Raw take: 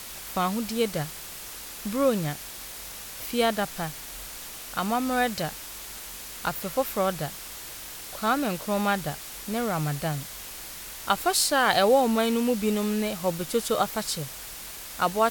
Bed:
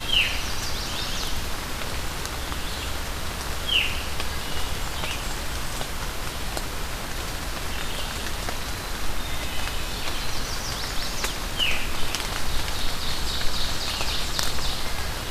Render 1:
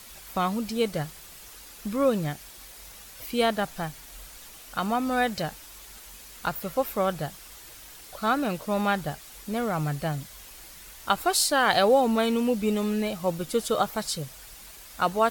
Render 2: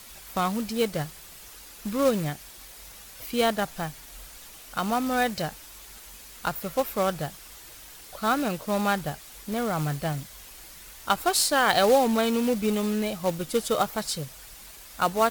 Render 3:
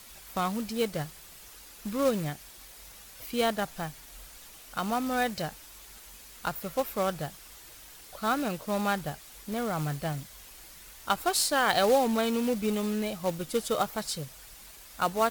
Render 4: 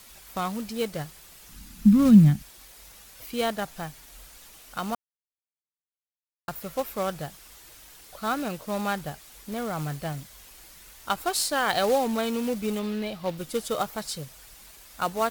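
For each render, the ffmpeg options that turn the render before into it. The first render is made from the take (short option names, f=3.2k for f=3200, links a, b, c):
-af "afftdn=nr=8:nf=-40"
-af "acrusher=bits=3:mode=log:mix=0:aa=0.000001"
-af "volume=-3.5dB"
-filter_complex "[0:a]asettb=1/sr,asplit=3[a][b][c];[a]atrim=end=1.494[d];[b]atrim=start=1.49:end=2.43,asetpts=PTS-STARTPTS,afade=t=in:d=0.004:c=qsin,afade=t=out:st=0.936:d=0.004:c=qsin,lowshelf=f=310:t=q:w=3:g=13[e];[c]atrim=start=2.426[f];[d][e]acrossfade=d=0.004:c1=hsin:c2=qsin[g];[g][f]acrossfade=d=0.004:c1=qsin:c2=hsin,asettb=1/sr,asplit=3[h][i][j];[h]atrim=end=12.794[k];[i]atrim=start=12.79:end=13.38,asetpts=PTS-STARTPTS,afade=t=in:d=0.004:c=qsin,afade=t=out:st=0.586:d=0.004:c=qsin,highshelf=f=5.3k:t=q:w=1.5:g=-6.5[l];[j]atrim=start=13.376[m];[k][l]acrossfade=d=0.004:c1=hsin:c2=qsin[n];[n][m]acrossfade=d=0.004:c1=qsin:c2=hsin,asplit=3[o][p][q];[o]atrim=end=4.95,asetpts=PTS-STARTPTS,afade=t=out:st=4.946:d=0.004:c=hsin[r];[p]atrim=start=4.95:end=6.48,asetpts=PTS-STARTPTS,volume=0[s];[q]atrim=start=6.48,asetpts=PTS-STARTPTS,afade=t=in:d=0.004:c=hsin[t];[r][s][t]concat=n=3:v=0:a=1"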